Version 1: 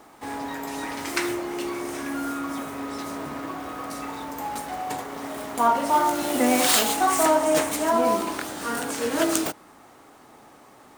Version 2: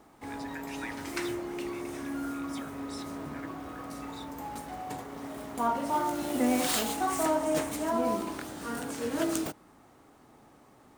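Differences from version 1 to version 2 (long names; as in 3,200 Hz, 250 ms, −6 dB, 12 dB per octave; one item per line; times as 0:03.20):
background −10.0 dB
master: add low-shelf EQ 290 Hz +10.5 dB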